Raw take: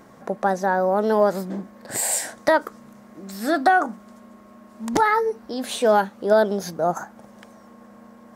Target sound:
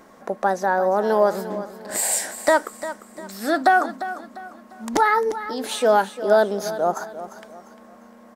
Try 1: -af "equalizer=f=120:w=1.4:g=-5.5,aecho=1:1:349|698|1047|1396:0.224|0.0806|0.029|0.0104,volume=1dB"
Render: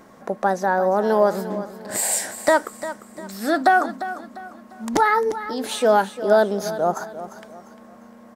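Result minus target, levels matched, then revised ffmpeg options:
125 Hz band +3.5 dB
-af "equalizer=f=120:w=1.4:g=-15,aecho=1:1:349|698|1047|1396:0.224|0.0806|0.029|0.0104,volume=1dB"

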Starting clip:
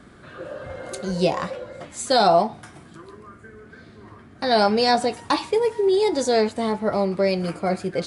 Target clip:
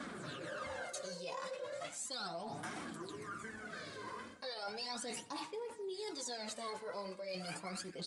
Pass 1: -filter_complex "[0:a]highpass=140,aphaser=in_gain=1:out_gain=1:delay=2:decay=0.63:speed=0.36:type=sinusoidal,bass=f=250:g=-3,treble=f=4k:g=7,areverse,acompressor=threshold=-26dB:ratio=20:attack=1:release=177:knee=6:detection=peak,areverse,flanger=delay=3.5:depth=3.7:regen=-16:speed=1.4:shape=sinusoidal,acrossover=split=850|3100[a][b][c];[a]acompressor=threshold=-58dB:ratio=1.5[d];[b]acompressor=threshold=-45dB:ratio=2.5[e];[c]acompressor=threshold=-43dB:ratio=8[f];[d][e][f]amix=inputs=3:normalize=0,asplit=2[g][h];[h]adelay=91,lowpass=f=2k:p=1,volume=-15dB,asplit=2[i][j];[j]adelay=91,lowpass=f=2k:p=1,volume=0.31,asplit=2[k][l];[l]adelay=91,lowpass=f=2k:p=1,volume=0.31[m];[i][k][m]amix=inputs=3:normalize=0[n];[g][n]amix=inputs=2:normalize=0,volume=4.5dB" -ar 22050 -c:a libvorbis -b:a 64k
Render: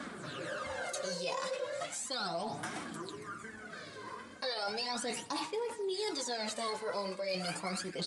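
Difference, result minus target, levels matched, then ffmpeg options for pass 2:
compressor: peak gain reduction -10 dB
-filter_complex "[0:a]highpass=140,aphaser=in_gain=1:out_gain=1:delay=2:decay=0.63:speed=0.36:type=sinusoidal,bass=f=250:g=-3,treble=f=4k:g=7,areverse,acompressor=threshold=-36.5dB:ratio=20:attack=1:release=177:knee=6:detection=peak,areverse,flanger=delay=3.5:depth=3.7:regen=-16:speed=1.4:shape=sinusoidal,acrossover=split=850|3100[a][b][c];[a]acompressor=threshold=-58dB:ratio=1.5[d];[b]acompressor=threshold=-45dB:ratio=2.5[e];[c]acompressor=threshold=-43dB:ratio=8[f];[d][e][f]amix=inputs=3:normalize=0,asplit=2[g][h];[h]adelay=91,lowpass=f=2k:p=1,volume=-15dB,asplit=2[i][j];[j]adelay=91,lowpass=f=2k:p=1,volume=0.31,asplit=2[k][l];[l]adelay=91,lowpass=f=2k:p=1,volume=0.31[m];[i][k][m]amix=inputs=3:normalize=0[n];[g][n]amix=inputs=2:normalize=0,volume=4.5dB" -ar 22050 -c:a libvorbis -b:a 64k

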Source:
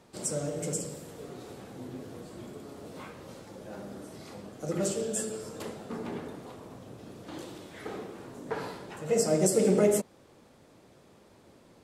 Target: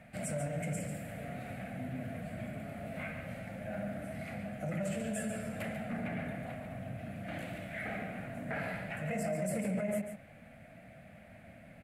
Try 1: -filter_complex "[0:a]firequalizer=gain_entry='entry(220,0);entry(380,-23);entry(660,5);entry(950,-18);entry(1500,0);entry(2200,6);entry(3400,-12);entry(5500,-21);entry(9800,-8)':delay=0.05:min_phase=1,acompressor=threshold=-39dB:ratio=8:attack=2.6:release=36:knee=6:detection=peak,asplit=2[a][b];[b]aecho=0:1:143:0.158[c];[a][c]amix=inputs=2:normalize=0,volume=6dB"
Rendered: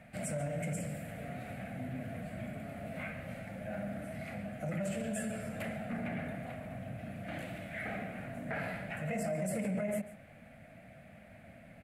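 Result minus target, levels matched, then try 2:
echo-to-direct -7.5 dB
-filter_complex "[0:a]firequalizer=gain_entry='entry(220,0);entry(380,-23);entry(660,5);entry(950,-18);entry(1500,0);entry(2200,6);entry(3400,-12);entry(5500,-21);entry(9800,-8)':delay=0.05:min_phase=1,acompressor=threshold=-39dB:ratio=8:attack=2.6:release=36:knee=6:detection=peak,asplit=2[a][b];[b]aecho=0:1:143:0.376[c];[a][c]amix=inputs=2:normalize=0,volume=6dB"

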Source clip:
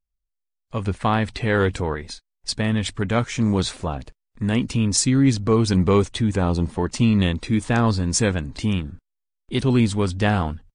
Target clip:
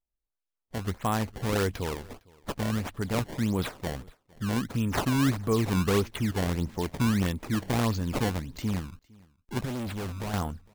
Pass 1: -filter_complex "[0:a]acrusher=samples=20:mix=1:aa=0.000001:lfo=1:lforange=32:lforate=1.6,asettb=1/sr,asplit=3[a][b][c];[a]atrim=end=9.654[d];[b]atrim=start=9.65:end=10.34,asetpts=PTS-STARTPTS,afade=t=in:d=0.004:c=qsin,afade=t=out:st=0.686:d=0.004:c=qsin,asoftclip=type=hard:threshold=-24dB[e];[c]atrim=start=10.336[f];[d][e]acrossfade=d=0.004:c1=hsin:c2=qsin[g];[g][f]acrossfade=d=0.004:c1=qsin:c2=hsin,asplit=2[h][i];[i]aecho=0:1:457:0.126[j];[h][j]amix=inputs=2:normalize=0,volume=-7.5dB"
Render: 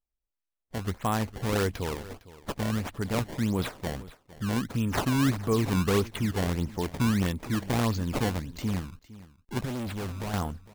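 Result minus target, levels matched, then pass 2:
echo-to-direct +7.5 dB
-filter_complex "[0:a]acrusher=samples=20:mix=1:aa=0.000001:lfo=1:lforange=32:lforate=1.6,asettb=1/sr,asplit=3[a][b][c];[a]atrim=end=9.654[d];[b]atrim=start=9.65:end=10.34,asetpts=PTS-STARTPTS,afade=t=in:d=0.004:c=qsin,afade=t=out:st=0.686:d=0.004:c=qsin,asoftclip=type=hard:threshold=-24dB[e];[c]atrim=start=10.336[f];[d][e]acrossfade=d=0.004:c1=hsin:c2=qsin[g];[g][f]acrossfade=d=0.004:c1=qsin:c2=hsin,asplit=2[h][i];[i]aecho=0:1:457:0.0531[j];[h][j]amix=inputs=2:normalize=0,volume=-7.5dB"

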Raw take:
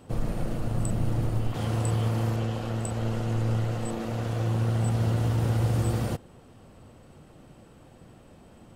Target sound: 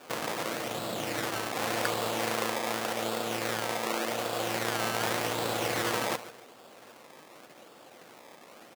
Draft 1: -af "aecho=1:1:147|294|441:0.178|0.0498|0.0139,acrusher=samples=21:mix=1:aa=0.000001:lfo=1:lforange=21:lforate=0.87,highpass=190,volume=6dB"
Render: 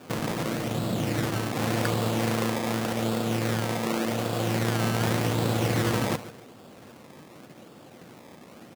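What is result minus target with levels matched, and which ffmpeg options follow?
250 Hz band +6.0 dB
-af "aecho=1:1:147|294|441:0.178|0.0498|0.0139,acrusher=samples=21:mix=1:aa=0.000001:lfo=1:lforange=21:lforate=0.87,highpass=490,volume=6dB"

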